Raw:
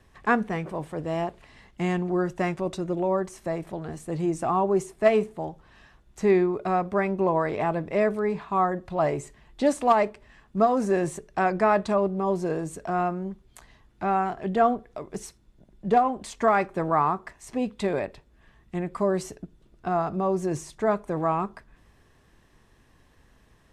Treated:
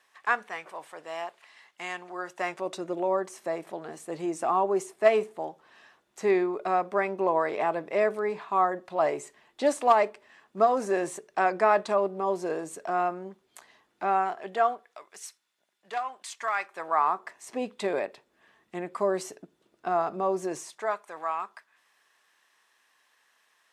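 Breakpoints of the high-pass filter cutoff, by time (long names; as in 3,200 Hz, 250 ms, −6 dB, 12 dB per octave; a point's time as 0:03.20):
0:02.14 930 Hz
0:02.78 390 Hz
0:14.18 390 Hz
0:15.14 1,400 Hz
0:16.56 1,400 Hz
0:17.41 360 Hz
0:20.43 360 Hz
0:21.04 1,100 Hz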